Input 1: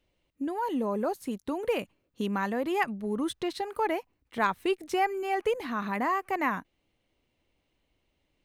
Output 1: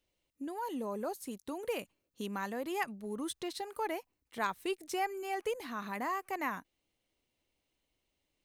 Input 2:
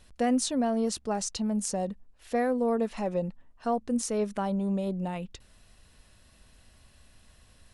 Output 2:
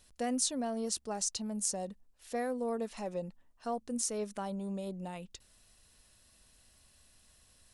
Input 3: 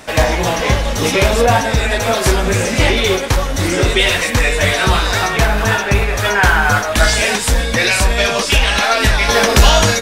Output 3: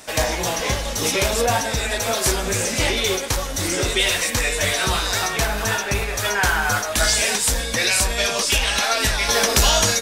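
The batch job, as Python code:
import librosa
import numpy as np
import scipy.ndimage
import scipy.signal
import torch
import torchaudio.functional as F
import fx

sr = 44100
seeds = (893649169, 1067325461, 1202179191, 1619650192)

y = fx.bass_treble(x, sr, bass_db=-3, treble_db=9)
y = F.gain(torch.from_numpy(y), -7.5).numpy()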